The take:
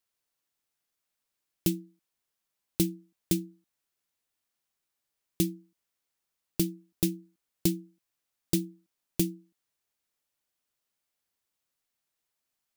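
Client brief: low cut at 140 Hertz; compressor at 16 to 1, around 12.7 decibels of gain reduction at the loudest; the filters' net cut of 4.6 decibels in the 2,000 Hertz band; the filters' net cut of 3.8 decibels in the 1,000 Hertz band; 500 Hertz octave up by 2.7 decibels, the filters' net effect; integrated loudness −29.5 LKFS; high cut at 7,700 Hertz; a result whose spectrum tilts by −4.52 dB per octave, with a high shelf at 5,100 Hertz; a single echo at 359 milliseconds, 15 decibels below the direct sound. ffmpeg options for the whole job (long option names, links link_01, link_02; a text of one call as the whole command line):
ffmpeg -i in.wav -af "highpass=140,lowpass=7700,equalizer=frequency=500:width_type=o:gain=7.5,equalizer=frequency=1000:width_type=o:gain=-8.5,equalizer=frequency=2000:width_type=o:gain=-6,highshelf=frequency=5100:gain=3.5,acompressor=threshold=-34dB:ratio=16,aecho=1:1:359:0.178,volume=14.5dB" out.wav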